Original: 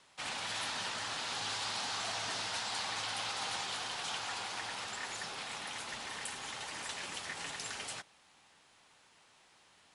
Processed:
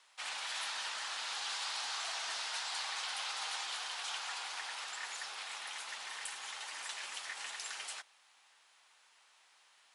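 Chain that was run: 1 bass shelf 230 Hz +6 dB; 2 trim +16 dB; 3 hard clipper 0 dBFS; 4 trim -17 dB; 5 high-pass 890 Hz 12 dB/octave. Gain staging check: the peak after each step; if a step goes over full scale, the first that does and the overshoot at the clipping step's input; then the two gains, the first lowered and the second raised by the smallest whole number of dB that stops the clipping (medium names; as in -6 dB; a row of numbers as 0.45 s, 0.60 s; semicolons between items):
-22.0 dBFS, -6.0 dBFS, -6.0 dBFS, -23.0 dBFS, -24.0 dBFS; nothing clips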